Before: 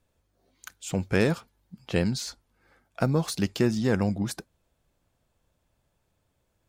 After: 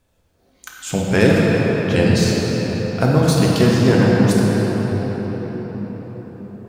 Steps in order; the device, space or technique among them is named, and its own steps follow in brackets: cathedral (reverberation RT60 5.9 s, pre-delay 4 ms, DRR -4.5 dB); trim +6.5 dB

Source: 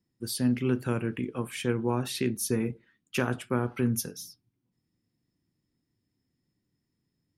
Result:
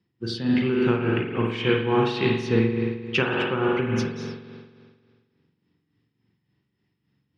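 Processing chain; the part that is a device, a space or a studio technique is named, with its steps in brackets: combo amplifier with spring reverb and tremolo (spring tank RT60 1.8 s, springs 44 ms, chirp 75 ms, DRR -1.5 dB; tremolo 3.5 Hz, depth 55%; cabinet simulation 92–4400 Hz, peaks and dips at 250 Hz -7 dB, 610 Hz -6 dB, 2.9 kHz +4 dB); trim +8 dB

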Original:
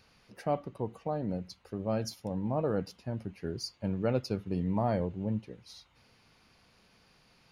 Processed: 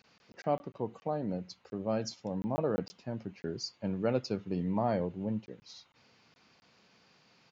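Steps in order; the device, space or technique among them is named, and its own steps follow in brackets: call with lost packets (high-pass 140 Hz 12 dB/octave; resampled via 16 kHz; lost packets of 20 ms)

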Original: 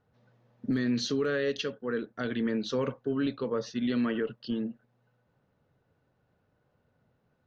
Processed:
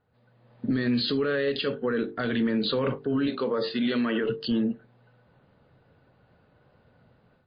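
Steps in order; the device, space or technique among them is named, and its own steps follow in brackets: hum notches 50/100/150/200/250/300/350/400/450 Hz; 3.28–4.24 s: Bessel high-pass 250 Hz, order 2; low-bitrate web radio (level rider gain up to 11 dB; peak limiter -19 dBFS, peak gain reduction 10 dB; trim +1 dB; MP3 24 kbps 11.025 kHz)

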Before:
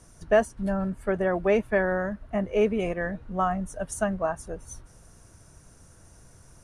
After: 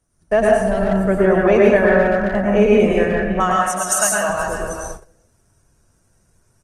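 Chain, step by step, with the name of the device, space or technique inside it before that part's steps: 3.40–4.29 s: frequency weighting ITU-R 468; speakerphone in a meeting room (reverberation RT60 0.80 s, pre-delay 95 ms, DRR -3 dB; speakerphone echo 390 ms, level -9 dB; level rider gain up to 3.5 dB; gate -33 dBFS, range -18 dB; trim +3 dB; Opus 24 kbps 48 kHz)

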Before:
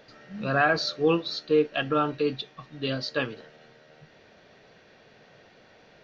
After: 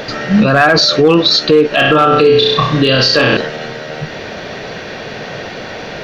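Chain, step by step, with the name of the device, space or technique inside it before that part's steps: 1.67–3.37 s: flutter echo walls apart 5.5 m, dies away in 0.55 s; loud club master (compression 1.5:1, threshold -32 dBFS, peak gain reduction 6 dB; hard clipper -20 dBFS, distortion -23 dB; loudness maximiser +30.5 dB); trim -1 dB

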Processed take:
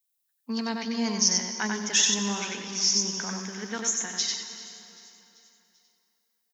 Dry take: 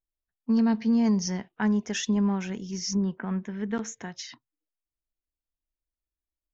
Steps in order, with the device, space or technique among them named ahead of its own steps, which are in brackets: PA in a hall (high-pass 150 Hz; peaking EQ 3.8 kHz +3.5 dB 0.26 oct; delay 94 ms -4 dB; reverberation RT60 3.0 s, pre-delay 92 ms, DRR 8.5 dB); tilt EQ +3.5 dB/octave; 2.40–2.96 s: low-pass 6 kHz 12 dB/octave; treble shelf 6.2 kHz +6 dB; feedback delay 390 ms, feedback 51%, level -20 dB

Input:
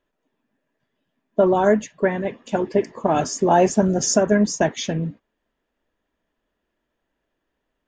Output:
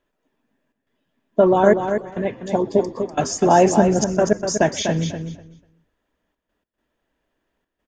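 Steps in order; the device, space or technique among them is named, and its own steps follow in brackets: time-frequency box 2.47–2.97 s, 1.2–3.2 kHz -13 dB; trance gate with a delay (trance gate "xxxxx.xxxxxx.x.x" 104 bpm -24 dB; feedback delay 246 ms, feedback 17%, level -7.5 dB); frequency-shifting echo 125 ms, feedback 41%, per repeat -70 Hz, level -22 dB; trim +2 dB

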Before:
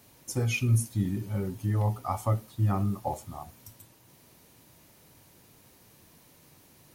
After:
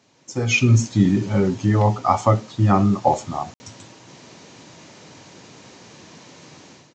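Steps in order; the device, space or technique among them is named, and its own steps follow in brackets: call with lost packets (high-pass 150 Hz 12 dB/octave; resampled via 16 kHz; level rider gain up to 16 dB; lost packets of 60 ms random)

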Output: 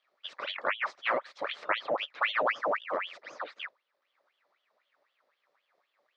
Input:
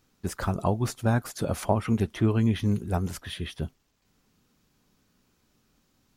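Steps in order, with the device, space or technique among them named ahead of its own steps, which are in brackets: voice changer toy (ring modulator with a swept carrier 1.8 kHz, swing 80%, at 3.9 Hz; cabinet simulation 430–4400 Hz, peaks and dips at 570 Hz +9 dB, 1.2 kHz +6 dB, 1.9 kHz +3 dB, 2.9 kHz -6 dB); trim -5 dB

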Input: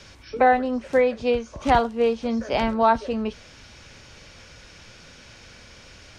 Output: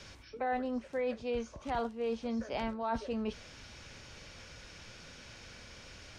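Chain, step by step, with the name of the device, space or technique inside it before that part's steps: compression on the reversed sound (reverse; compression 5:1, threshold -28 dBFS, peak gain reduction 14 dB; reverse); trim -4.5 dB

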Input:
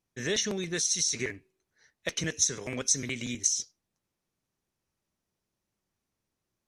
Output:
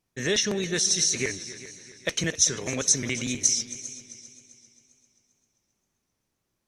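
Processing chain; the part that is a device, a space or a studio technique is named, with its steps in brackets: multi-head tape echo (multi-head delay 132 ms, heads second and third, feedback 45%, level -16.5 dB; wow and flutter); trim +4.5 dB

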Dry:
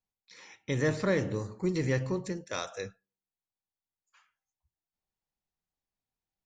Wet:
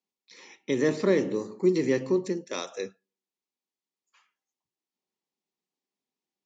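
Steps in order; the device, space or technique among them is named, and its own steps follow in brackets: television speaker (cabinet simulation 180–7500 Hz, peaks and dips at 250 Hz +5 dB, 380 Hz +8 dB, 690 Hz -4 dB, 1.5 kHz -8 dB); trim +2.5 dB

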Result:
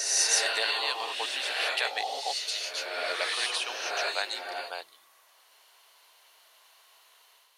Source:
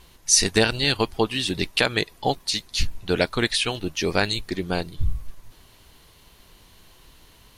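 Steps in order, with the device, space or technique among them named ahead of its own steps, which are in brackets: ghost voice (reverse; reverberation RT60 1.8 s, pre-delay 107 ms, DRR -3.5 dB; reverse; high-pass 610 Hz 24 dB/octave); trim -8.5 dB

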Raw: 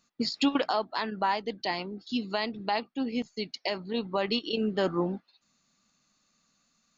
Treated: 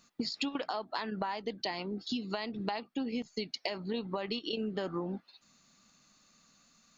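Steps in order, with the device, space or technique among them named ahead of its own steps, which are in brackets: serial compression, leveller first (compression 2:1, threshold -29 dBFS, peak gain reduction 5 dB; compression 5:1, threshold -39 dBFS, peak gain reduction 12.5 dB); trim +6 dB

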